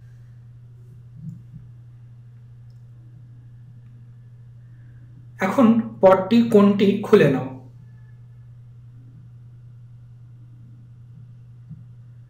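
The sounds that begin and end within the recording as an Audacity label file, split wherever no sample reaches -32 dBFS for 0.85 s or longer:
1.190000	1.570000	sound
5.400000	7.580000	sound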